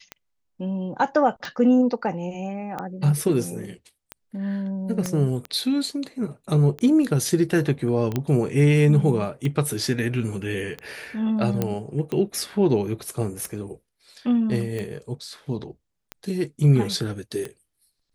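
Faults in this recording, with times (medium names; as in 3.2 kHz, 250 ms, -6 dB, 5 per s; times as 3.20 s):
tick 45 rpm -17 dBFS
5.06 s: pop -13 dBFS
8.16 s: pop -11 dBFS
11.62 s: pop -10 dBFS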